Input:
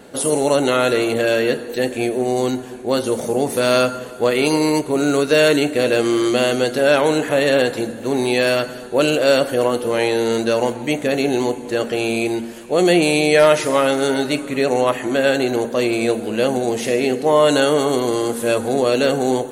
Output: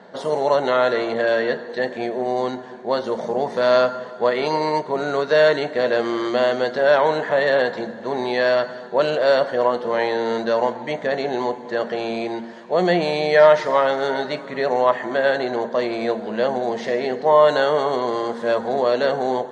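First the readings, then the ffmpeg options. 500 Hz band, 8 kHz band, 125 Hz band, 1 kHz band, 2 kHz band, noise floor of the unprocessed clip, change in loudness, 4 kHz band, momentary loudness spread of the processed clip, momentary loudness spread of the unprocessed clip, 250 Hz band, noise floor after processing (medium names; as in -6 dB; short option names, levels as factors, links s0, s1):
-1.5 dB, under -15 dB, -8.0 dB, +1.5 dB, -2.0 dB, -32 dBFS, -2.5 dB, -6.5 dB, 9 LU, 7 LU, -8.5 dB, -35 dBFS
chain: -af "highpass=180,equalizer=f=190:t=q:w=4:g=8,equalizer=f=290:t=q:w=4:g=-10,equalizer=f=650:t=q:w=4:g=6,equalizer=f=970:t=q:w=4:g=9,equalizer=f=1800:t=q:w=4:g=7,equalizer=f=2600:t=q:w=4:g=-10,lowpass=f=4900:w=0.5412,lowpass=f=4900:w=1.3066,volume=0.631"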